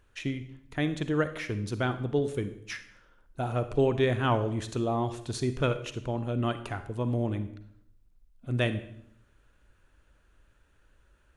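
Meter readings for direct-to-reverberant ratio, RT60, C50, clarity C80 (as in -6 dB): 10.5 dB, 0.70 s, 11.5 dB, 14.5 dB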